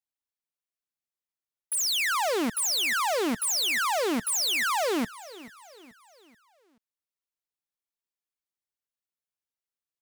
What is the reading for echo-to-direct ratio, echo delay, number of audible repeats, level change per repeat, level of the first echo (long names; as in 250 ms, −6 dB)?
−17.5 dB, 433 ms, 3, −7.0 dB, −18.5 dB